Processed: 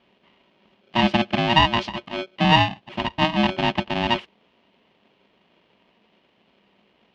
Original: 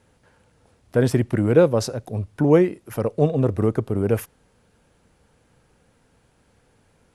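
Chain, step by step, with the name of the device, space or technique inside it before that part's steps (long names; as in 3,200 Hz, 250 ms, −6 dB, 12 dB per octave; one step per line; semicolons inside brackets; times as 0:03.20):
ring modulator pedal into a guitar cabinet (ring modulator with a square carrier 470 Hz; loudspeaker in its box 83–4,000 Hz, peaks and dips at 87 Hz −7 dB, 200 Hz +10 dB, 330 Hz −3 dB, 560 Hz −4 dB, 1,400 Hz −8 dB, 2,900 Hz +9 dB)
level −1 dB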